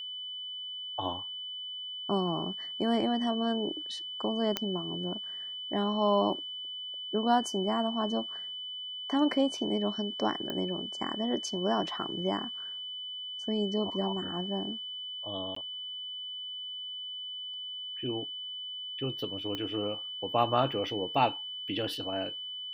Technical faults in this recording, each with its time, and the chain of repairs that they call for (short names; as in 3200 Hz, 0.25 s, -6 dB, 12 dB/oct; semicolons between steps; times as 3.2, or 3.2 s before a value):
tone 3000 Hz -37 dBFS
4.57 pop -13 dBFS
10.5 pop -21 dBFS
15.55–15.56 gap 14 ms
19.55 pop -21 dBFS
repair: de-click; notch 3000 Hz, Q 30; interpolate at 15.55, 14 ms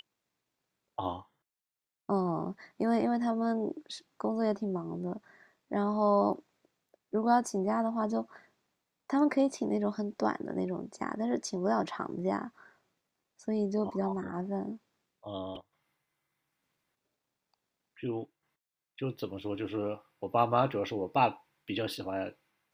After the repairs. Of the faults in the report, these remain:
19.55 pop